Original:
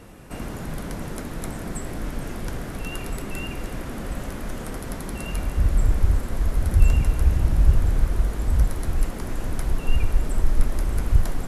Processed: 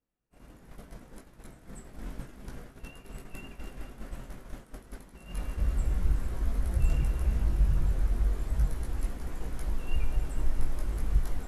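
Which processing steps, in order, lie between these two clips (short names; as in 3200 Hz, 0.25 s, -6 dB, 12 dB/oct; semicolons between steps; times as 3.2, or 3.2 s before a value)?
dark delay 0.209 s, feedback 59%, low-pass 3400 Hz, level -10 dB; chorus voices 6, 0.3 Hz, delay 19 ms, depth 4.3 ms; expander -24 dBFS; gain -7 dB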